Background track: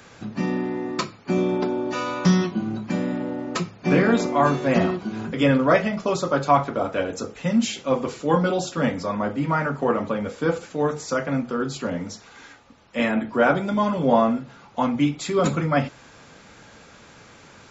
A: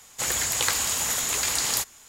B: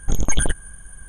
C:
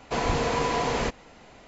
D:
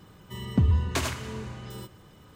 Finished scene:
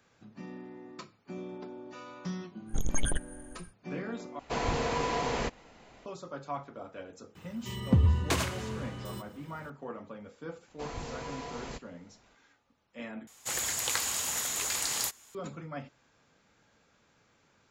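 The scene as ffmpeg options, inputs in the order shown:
-filter_complex "[3:a]asplit=2[a][b];[0:a]volume=-19.5dB[c];[4:a]highpass=50[d];[b]bass=f=250:g=3,treble=f=4k:g=4[e];[1:a]lowshelf=f=62:g=-9.5[f];[c]asplit=3[g][h][i];[g]atrim=end=4.394[j];[a]atrim=end=1.67,asetpts=PTS-STARTPTS,volume=-5dB[k];[h]atrim=start=6.056:end=13.274[l];[f]atrim=end=2.08,asetpts=PTS-STARTPTS,volume=-6.5dB[m];[i]atrim=start=15.346[n];[2:a]atrim=end=1.08,asetpts=PTS-STARTPTS,volume=-10.5dB,afade=t=in:d=0.1,afade=t=out:st=0.98:d=0.1,adelay=2660[o];[d]atrim=end=2.35,asetpts=PTS-STARTPTS,volume=-1dB,afade=t=in:d=0.004:c=hsin,afade=t=out:st=2.346:d=0.004:c=hsin,adelay=7350[p];[e]atrim=end=1.67,asetpts=PTS-STARTPTS,volume=-16dB,afade=t=in:d=0.004:c=hsin,afade=t=out:st=1.666:d=0.004:c=hsin,adelay=10680[q];[j][k]acrossfade=d=0.004:c1=hsin:c2=hsin[r];[r][l]acrossfade=d=0.004:c1=hsin:c2=hsin[s];[s][m]acrossfade=d=0.004:c1=hsin:c2=hsin[t];[t][n]acrossfade=d=0.004:c1=hsin:c2=hsin[u];[u][o][p][q]amix=inputs=4:normalize=0"

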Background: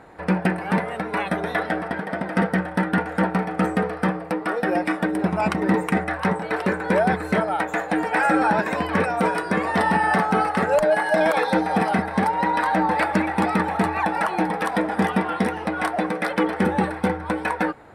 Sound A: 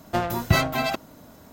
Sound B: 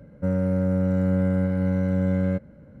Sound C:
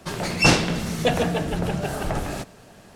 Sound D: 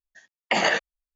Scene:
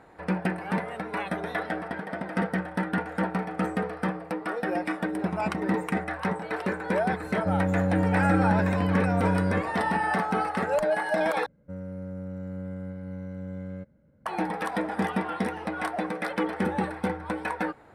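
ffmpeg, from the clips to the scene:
-filter_complex "[2:a]asplit=2[a][b];[0:a]volume=-6.5dB,asplit=2[c][d];[c]atrim=end=11.464[e];[b]atrim=end=2.8,asetpts=PTS-STARTPTS,volume=-14dB[f];[d]atrim=start=14.256[g];[a]atrim=end=2.8,asetpts=PTS-STARTPTS,volume=-2.5dB,afade=t=in:d=0.004:c=hsin,afade=t=out:st=2.796:d=0.004:c=hsin,adelay=7230[h];[e][f]acrossfade=d=0.004:c1=hsin:c2=hsin[i];[i][g]acrossfade=d=0.004:c1=hsin:c2=hsin[j];[j][h]amix=inputs=2:normalize=0"

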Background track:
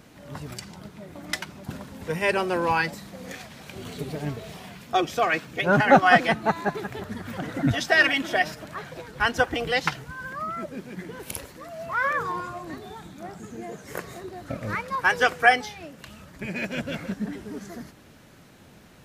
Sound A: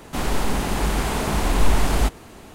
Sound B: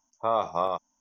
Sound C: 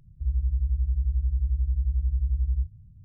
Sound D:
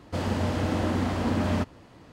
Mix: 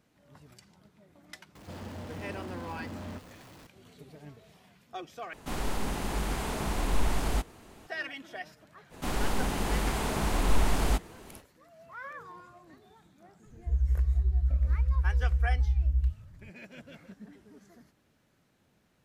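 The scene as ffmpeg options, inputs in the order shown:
-filter_complex "[1:a]asplit=2[a][b];[0:a]volume=-18dB[c];[4:a]aeval=exprs='val(0)+0.5*0.0282*sgn(val(0))':c=same[d];[c]asplit=2[e][f];[e]atrim=end=5.334[g];[a]atrim=end=2.54,asetpts=PTS-STARTPTS,volume=-9.5dB[h];[f]atrim=start=7.866[i];[d]atrim=end=2.12,asetpts=PTS-STARTPTS,volume=-16.5dB,afade=t=in:d=0.004:c=hsin,afade=t=out:st=2.116:d=0.004:c=hsin,adelay=1550[j];[b]atrim=end=2.54,asetpts=PTS-STARTPTS,volume=-7dB,afade=t=in:d=0.05,afade=t=out:st=2.49:d=0.05,adelay=8890[k];[3:a]atrim=end=3.04,asetpts=PTS-STARTPTS,volume=-1dB,afade=t=in:d=0.004:c=hsin,afade=t=out:st=3.036:d=0.004:c=hsin,adelay=13460[l];[g][h]acrossfade=d=0.004:c1=hsin:c2=hsin[m];[m][i]acrossfade=d=0.004:c1=hsin:c2=hsin[n];[n][j][k][l]amix=inputs=4:normalize=0"

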